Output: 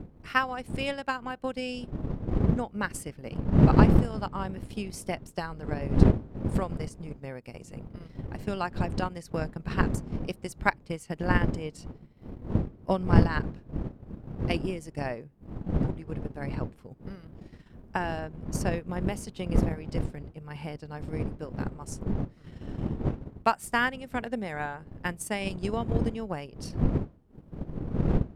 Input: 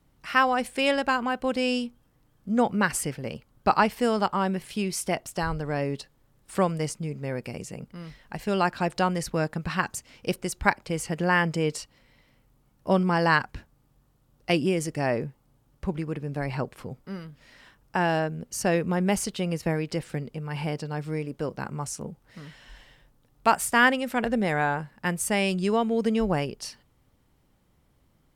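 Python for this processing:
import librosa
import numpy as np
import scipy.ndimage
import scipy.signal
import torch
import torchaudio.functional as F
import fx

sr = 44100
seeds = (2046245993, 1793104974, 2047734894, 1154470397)

y = fx.dmg_wind(x, sr, seeds[0], corner_hz=210.0, level_db=-23.0)
y = fx.transient(y, sr, attack_db=8, sustain_db=-7)
y = y * 10.0 ** (-9.5 / 20.0)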